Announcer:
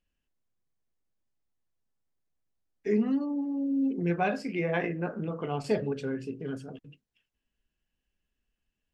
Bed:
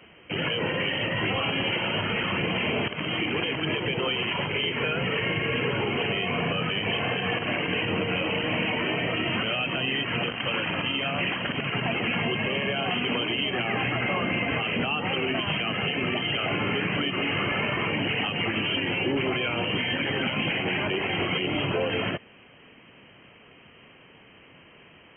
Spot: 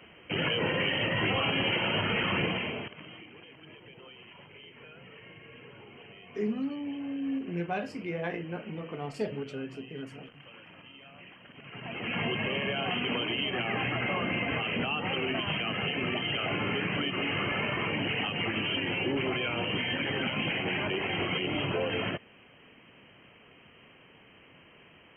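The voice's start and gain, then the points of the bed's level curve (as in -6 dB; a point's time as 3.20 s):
3.50 s, -5.0 dB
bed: 2.43 s -1.5 dB
3.31 s -23.5 dB
11.48 s -23.5 dB
12.20 s -4 dB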